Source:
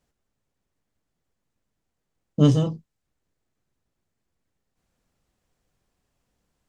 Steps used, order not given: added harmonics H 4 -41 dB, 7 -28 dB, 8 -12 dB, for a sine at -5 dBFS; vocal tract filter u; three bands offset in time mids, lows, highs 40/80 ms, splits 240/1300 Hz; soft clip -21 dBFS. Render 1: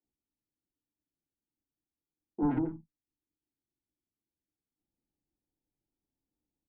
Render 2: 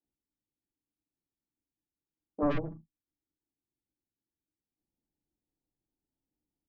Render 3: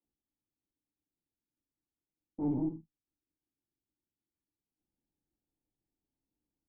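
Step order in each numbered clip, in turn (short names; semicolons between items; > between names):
added harmonics > vocal tract filter > soft clip > three bands offset in time; vocal tract filter > added harmonics > soft clip > three bands offset in time; three bands offset in time > added harmonics > soft clip > vocal tract filter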